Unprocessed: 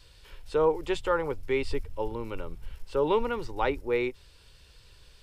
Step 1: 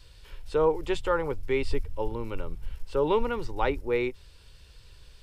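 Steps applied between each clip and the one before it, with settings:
low-shelf EQ 140 Hz +5 dB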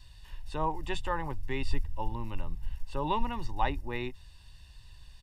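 comb filter 1.1 ms, depth 80%
level −4.5 dB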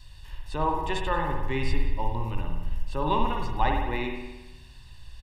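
single-tap delay 183 ms −21 dB
spring reverb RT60 1.1 s, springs 53 ms, chirp 50 ms, DRR 1.5 dB
level +3.5 dB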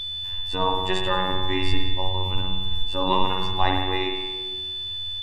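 phases set to zero 93.2 Hz
echo through a band-pass that steps 152 ms, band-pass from 2,500 Hz, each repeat −1.4 octaves, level −10 dB
steady tone 3,500 Hz −34 dBFS
level +5.5 dB

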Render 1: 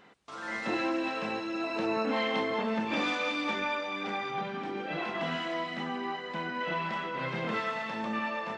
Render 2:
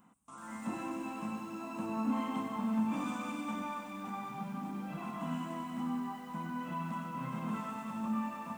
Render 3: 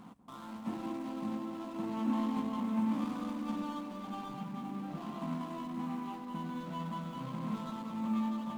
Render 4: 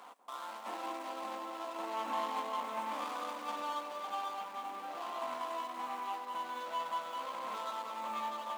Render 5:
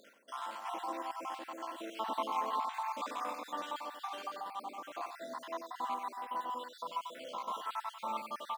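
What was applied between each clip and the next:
drawn EQ curve 130 Hz 0 dB, 250 Hz +6 dB, 400 Hz −16 dB, 1,100 Hz 0 dB, 1,800 Hz −16 dB, 2,700 Hz −11 dB, 4,500 Hz −19 dB, 8,400 Hz +10 dB; feedback echo at a low word length 96 ms, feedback 80%, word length 9 bits, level −8.5 dB; level −3.5 dB
running median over 25 samples; feedback echo with a band-pass in the loop 191 ms, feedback 80%, band-pass 360 Hz, level −4 dB; reversed playback; upward compression, threshold −38 dBFS; reversed playback
high-pass filter 500 Hz 24 dB per octave; level +6 dB
time-frequency cells dropped at random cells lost 58%; single-tap delay 93 ms −8 dB; level +2.5 dB

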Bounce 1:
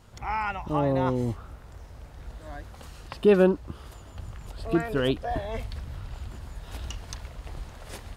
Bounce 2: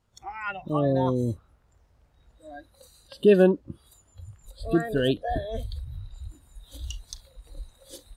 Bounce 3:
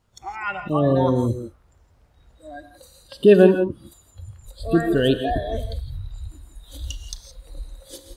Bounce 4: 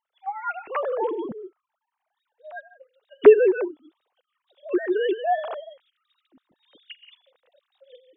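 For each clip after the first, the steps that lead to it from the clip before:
noise reduction from a noise print of the clip's start 19 dB; level +1.5 dB
reverb whose tail is shaped and stops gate 190 ms rising, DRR 8.5 dB; level +4.5 dB
three sine waves on the formant tracks; level −3 dB

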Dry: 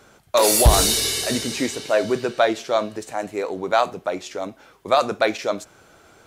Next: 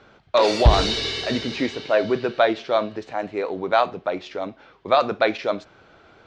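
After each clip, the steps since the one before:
low-pass filter 4,300 Hz 24 dB per octave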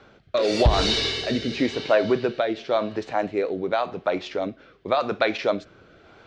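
downward compressor 4 to 1, threshold −18 dBFS, peak gain reduction 9 dB
rotating-speaker cabinet horn 0.9 Hz
level +3.5 dB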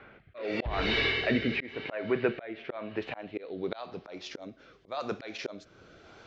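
low-pass filter sweep 2,200 Hz → 6,600 Hz, 0:02.71–0:04.41
volume swells 396 ms
level −2.5 dB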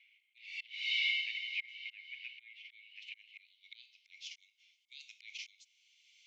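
Chebyshev high-pass with heavy ripple 2,100 Hz, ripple 6 dB

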